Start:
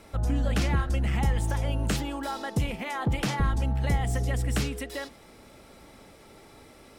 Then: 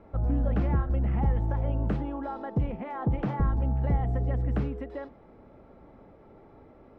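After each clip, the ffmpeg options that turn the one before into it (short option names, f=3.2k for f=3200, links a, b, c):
-af "lowpass=1k"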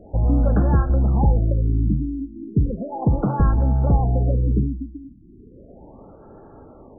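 -af "afftfilt=real='re*lt(b*sr/1024,310*pow(1800/310,0.5+0.5*sin(2*PI*0.35*pts/sr)))':imag='im*lt(b*sr/1024,310*pow(1800/310,0.5+0.5*sin(2*PI*0.35*pts/sr)))':win_size=1024:overlap=0.75,volume=8.5dB"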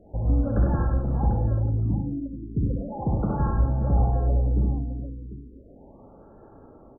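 -af "aecho=1:1:63|99|173|421|745:0.668|0.596|0.376|0.211|0.251,volume=-8dB"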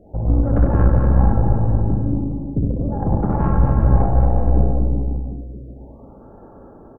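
-af "aeval=exprs='0.282*(cos(1*acos(clip(val(0)/0.282,-1,1)))-cos(1*PI/2))+0.0398*(cos(4*acos(clip(val(0)/0.282,-1,1)))-cos(4*PI/2))':c=same,aecho=1:1:230|379.5|476.7|539.8|580.9:0.631|0.398|0.251|0.158|0.1,volume=4.5dB"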